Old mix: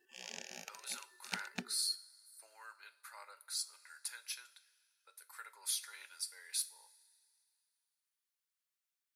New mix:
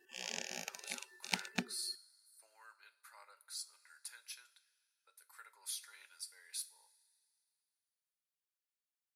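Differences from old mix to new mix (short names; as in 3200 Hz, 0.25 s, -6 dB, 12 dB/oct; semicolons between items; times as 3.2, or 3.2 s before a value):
speech -6.0 dB; background +5.0 dB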